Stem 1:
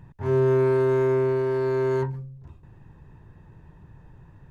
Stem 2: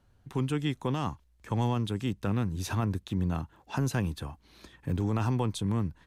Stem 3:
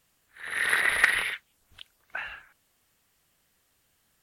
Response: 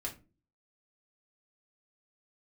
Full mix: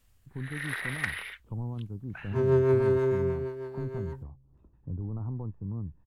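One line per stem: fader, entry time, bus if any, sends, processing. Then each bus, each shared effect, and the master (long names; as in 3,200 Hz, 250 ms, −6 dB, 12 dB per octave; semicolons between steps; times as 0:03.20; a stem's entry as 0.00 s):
0:03.01 −0.5 dB → 0:03.73 −10.5 dB, 2.10 s, no send, rotating-speaker cabinet horn 6.3 Hz; expander for the loud parts 1.5 to 1, over −37 dBFS
−17.5 dB, 0.00 s, no send, Butterworth low-pass 1,300 Hz 48 dB per octave; spectral tilt −4 dB per octave
−2.5 dB, 0.00 s, no send, automatic ducking −8 dB, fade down 0.65 s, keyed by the second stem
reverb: not used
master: no processing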